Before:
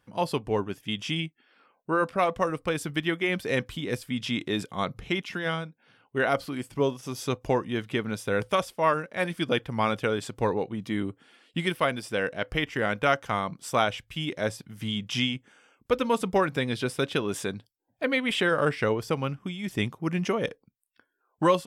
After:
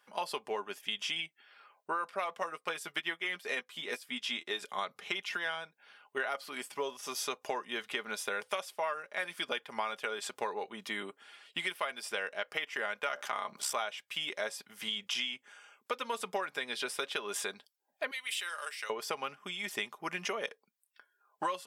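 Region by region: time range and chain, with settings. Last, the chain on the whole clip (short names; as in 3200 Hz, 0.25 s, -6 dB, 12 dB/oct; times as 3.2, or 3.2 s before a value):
2.4–4.63 doubler 12 ms -7.5 dB + upward expander, over -42 dBFS
13.08–13.73 ring modulator 33 Hz + fast leveller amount 50%
18.11–18.9 differentiator + notch 3300 Hz, Q 25
whole clip: HPF 690 Hz 12 dB/oct; comb 4.9 ms, depth 44%; compressor 5:1, threshold -35 dBFS; gain +2.5 dB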